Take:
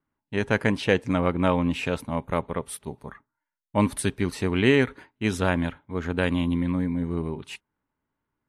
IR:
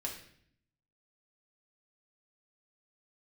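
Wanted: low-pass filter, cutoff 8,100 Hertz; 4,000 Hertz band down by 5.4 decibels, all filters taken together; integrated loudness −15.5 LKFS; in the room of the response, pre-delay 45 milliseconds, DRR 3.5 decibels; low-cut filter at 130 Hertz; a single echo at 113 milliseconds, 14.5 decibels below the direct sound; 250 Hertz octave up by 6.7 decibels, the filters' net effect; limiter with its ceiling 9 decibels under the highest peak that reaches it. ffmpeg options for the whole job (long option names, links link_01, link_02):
-filter_complex "[0:a]highpass=130,lowpass=8100,equalizer=frequency=250:width_type=o:gain=8.5,equalizer=frequency=4000:width_type=o:gain=-8,alimiter=limit=-12.5dB:level=0:latency=1,aecho=1:1:113:0.188,asplit=2[link_01][link_02];[1:a]atrim=start_sample=2205,adelay=45[link_03];[link_02][link_03]afir=irnorm=-1:irlink=0,volume=-4dB[link_04];[link_01][link_04]amix=inputs=2:normalize=0,volume=7dB"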